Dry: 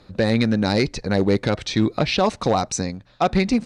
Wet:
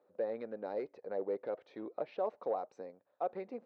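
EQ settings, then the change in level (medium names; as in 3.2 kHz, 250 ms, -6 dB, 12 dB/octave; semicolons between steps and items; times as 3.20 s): ladder band-pass 600 Hz, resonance 45%; -6.5 dB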